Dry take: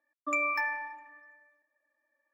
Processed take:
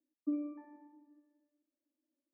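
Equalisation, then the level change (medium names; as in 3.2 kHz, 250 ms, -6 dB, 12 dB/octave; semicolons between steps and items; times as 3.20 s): Butterworth band-pass 280 Hz, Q 2.2; distance through air 300 m; +8.5 dB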